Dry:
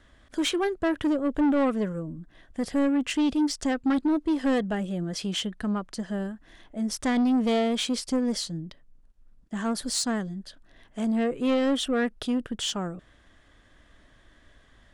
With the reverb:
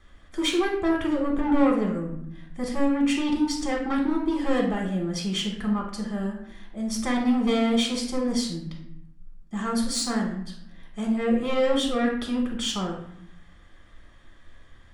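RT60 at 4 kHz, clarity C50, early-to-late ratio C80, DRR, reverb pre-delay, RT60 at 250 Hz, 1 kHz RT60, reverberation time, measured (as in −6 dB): 0.50 s, 4.5 dB, 8.5 dB, −1.0 dB, 3 ms, 1.0 s, 0.75 s, 0.75 s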